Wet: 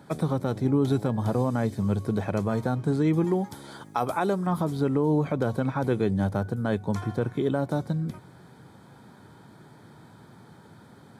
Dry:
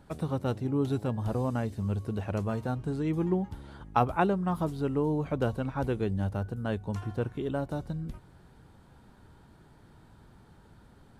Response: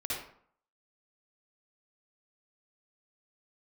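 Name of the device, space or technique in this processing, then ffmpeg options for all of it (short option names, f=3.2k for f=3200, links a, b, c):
PA system with an anti-feedback notch: -filter_complex "[0:a]asettb=1/sr,asplit=3[a][b][c];[a]atrim=end=3.244[d];[b]atrim=start=3.24:end=4.47,asetpts=PTS-STARTPTS,afade=t=in:d=0.004:c=qsin,afade=t=out:st=1.226:d=0.004:c=qsin,bass=f=250:g=-7,treble=f=4k:g=10[e];[c]atrim=start=4.466[f];[d][e]acrossfade=d=0.004:c1=hsin:c2=qsin[g];[g][f]acrossfade=d=0.004:c1=qsin:c2=hsin,highpass=f=110:w=0.5412,highpass=f=110:w=1.3066,asuperstop=centerf=2800:order=8:qfactor=7.9,alimiter=limit=-22dB:level=0:latency=1:release=76,volume=7.5dB"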